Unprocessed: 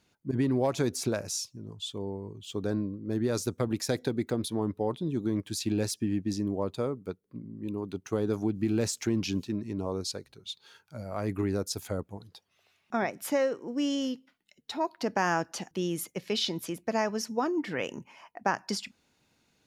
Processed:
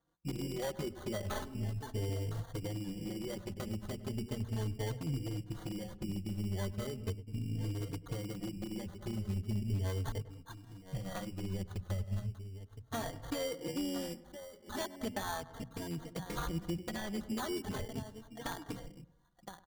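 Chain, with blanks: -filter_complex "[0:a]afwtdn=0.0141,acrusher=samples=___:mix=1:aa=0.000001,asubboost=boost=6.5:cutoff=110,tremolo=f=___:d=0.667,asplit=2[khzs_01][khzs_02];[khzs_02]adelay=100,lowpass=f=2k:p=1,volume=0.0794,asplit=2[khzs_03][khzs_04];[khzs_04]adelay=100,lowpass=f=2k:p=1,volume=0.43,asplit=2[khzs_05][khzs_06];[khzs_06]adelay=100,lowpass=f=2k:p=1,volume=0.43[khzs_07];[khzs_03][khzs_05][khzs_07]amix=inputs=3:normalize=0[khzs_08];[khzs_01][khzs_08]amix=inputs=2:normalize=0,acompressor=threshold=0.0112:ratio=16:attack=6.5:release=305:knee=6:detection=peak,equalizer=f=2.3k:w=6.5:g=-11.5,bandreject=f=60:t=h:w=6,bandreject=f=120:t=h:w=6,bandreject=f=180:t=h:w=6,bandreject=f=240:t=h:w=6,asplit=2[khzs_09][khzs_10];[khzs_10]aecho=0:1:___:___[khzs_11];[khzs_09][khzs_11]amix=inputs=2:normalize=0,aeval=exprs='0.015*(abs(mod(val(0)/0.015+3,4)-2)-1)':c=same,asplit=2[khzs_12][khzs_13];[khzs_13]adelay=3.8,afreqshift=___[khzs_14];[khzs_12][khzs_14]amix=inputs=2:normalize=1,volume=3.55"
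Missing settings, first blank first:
17, 87, 1016, 0.224, 0.37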